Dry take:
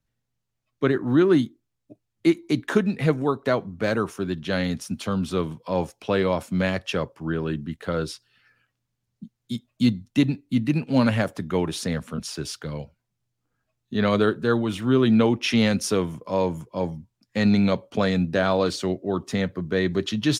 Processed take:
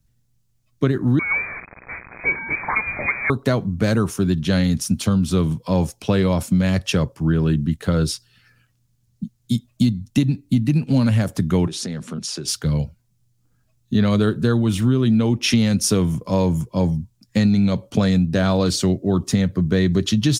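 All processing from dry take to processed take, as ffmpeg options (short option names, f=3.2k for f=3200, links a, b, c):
-filter_complex "[0:a]asettb=1/sr,asplit=3[a][b][c];[a]atrim=end=1.194[d];[b]atrim=start=1.19:end=3.3,asetpts=PTS-STARTPTS,afade=t=in:d=0.004:c=qsin,afade=t=out:st=2.106:d=0.004:c=qsin,aeval=exprs='val(0)+0.5*0.0708*sgn(val(0))':c=same,highpass=f=740:p=1,lowpass=f=2.2k:t=q:w=0.5098,lowpass=f=2.2k:t=q:w=0.6013,lowpass=f=2.2k:t=q:w=0.9,lowpass=f=2.2k:t=q:w=2.563,afreqshift=-2600[e];[c]atrim=start=3.296[f];[d][e]acrossfade=d=0.004:c1=hsin:c2=qsin[g];[g][f]acrossfade=d=0.004:c1=qsin:c2=hsin,asettb=1/sr,asplit=3[h][i][j];[h]atrim=end=11.674[k];[i]atrim=start=11.67:end=12.48,asetpts=PTS-STARTPTS,afade=t=in:d=0.004:c=qsin,afade=t=out:st=0.806:d=0.004:c=qsin,equalizer=f=370:t=o:w=0.22:g=7,acompressor=threshold=-32dB:ratio=10:attack=3.2:release=140:knee=1:detection=peak,highpass=170,lowpass=7.5k[l];[j]atrim=start=12.476[m];[k][l]acrossfade=d=0.004:c1=hsin:c2=qsin[n];[n][m]acrossfade=d=0.004:c1=qsin:c2=hsin,bass=f=250:g=13,treble=f=4k:g=10,acompressor=threshold=-17dB:ratio=6,volume=3dB"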